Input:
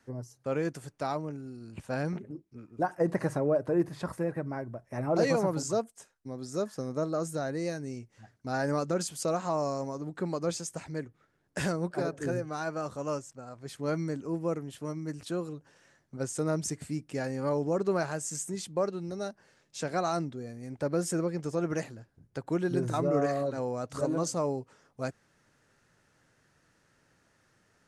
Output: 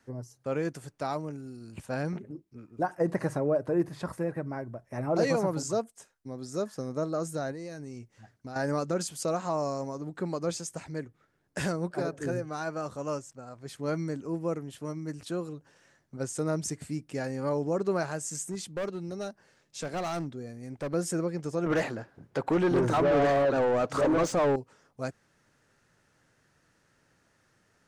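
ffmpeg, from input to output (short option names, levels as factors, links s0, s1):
-filter_complex "[0:a]asettb=1/sr,asplit=3[s0][s1][s2];[s0]atrim=end=1.124[s3];[s1]atrim=start=1.12:end=1.86,asetpts=PTS-STARTPTS,afade=t=in:d=0.004:c=qsin,afade=t=out:st=0.736:d=0.004:c=qsin,highshelf=f=5700:g=7.5[s4];[s2]atrim=start=1.856[s5];[s3][s4]acrossfade=d=0.004:c1=hsin:c2=qsin[s6];[s6][s5]acrossfade=d=0.004:c1=qsin:c2=hsin,asettb=1/sr,asplit=3[s7][s8][s9];[s7]atrim=end=7.514[s10];[s8]atrim=start=7.51:end=8.56,asetpts=PTS-STARTPTS,afade=t=in:d=0.004:c=qsin,afade=t=out:st=1.046:d=0.004:c=qsin,acompressor=threshold=0.0158:ratio=6:attack=3.2:release=140:knee=1:detection=peak[s11];[s9]atrim=start=8.556[s12];[s10][s11]acrossfade=d=0.004:c1=hsin:c2=qsin[s13];[s13][s12]acrossfade=d=0.004:c1=qsin:c2=hsin,asettb=1/sr,asplit=3[s14][s15][s16];[s14]atrim=end=18.514[s17];[s15]atrim=start=18.51:end=20.94,asetpts=PTS-STARTPTS,afade=t=in:d=0.004:c=qsin,afade=t=out:st=2.426:d=0.004:c=qsin,asoftclip=type=hard:threshold=0.0355[s18];[s16]atrim=start=20.936[s19];[s17][s18]acrossfade=d=0.004:c1=hsin:c2=qsin[s20];[s20][s19]acrossfade=d=0.004:c1=qsin:c2=hsin,asettb=1/sr,asplit=3[s21][s22][s23];[s21]atrim=end=21.664[s24];[s22]atrim=start=21.66:end=24.56,asetpts=PTS-STARTPTS,afade=t=in:d=0.004:c=qsin,afade=t=out:st=2.896:d=0.004:c=qsin,asplit=2[s25][s26];[s26]highpass=f=720:p=1,volume=20,asoftclip=type=tanh:threshold=0.15[s27];[s25][s27]amix=inputs=2:normalize=0,lowpass=f=1300:p=1,volume=0.501[s28];[s23]atrim=start=24.556[s29];[s24][s28]acrossfade=d=0.004:c1=hsin:c2=qsin[s30];[s30][s29]acrossfade=d=0.004:c1=qsin:c2=hsin"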